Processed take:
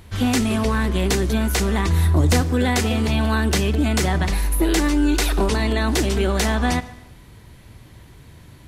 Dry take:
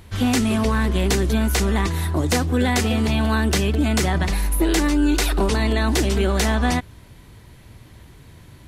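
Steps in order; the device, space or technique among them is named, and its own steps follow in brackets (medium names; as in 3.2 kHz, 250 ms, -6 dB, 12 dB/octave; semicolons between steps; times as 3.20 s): saturated reverb return (on a send at -13 dB: reverberation RT60 0.90 s, pre-delay 31 ms + saturation -19.5 dBFS, distortion -10 dB); 1.88–2.41 s: on the sum: bass shelf 120 Hz +10 dB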